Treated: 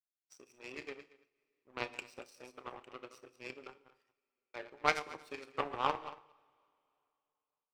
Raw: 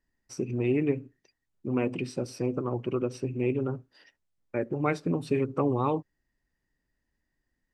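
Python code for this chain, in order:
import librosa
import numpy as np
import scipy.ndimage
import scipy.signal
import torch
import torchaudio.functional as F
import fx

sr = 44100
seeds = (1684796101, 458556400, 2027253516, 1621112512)

p1 = fx.reverse_delay(x, sr, ms=105, wet_db=-6.0)
p2 = scipy.signal.sosfilt(scipy.signal.butter(2, 810.0, 'highpass', fs=sr, output='sos'), p1)
p3 = fx.doubler(p2, sr, ms=31.0, db=-10.0)
p4 = fx.power_curve(p3, sr, exponent=2.0)
p5 = p4 + fx.echo_single(p4, sr, ms=230, db=-19.5, dry=0)
p6 = fx.rev_double_slope(p5, sr, seeds[0], early_s=0.65, late_s=2.9, knee_db=-19, drr_db=15.0)
p7 = fx.am_noise(p6, sr, seeds[1], hz=5.7, depth_pct=55)
y = p7 * librosa.db_to_amplitude(9.0)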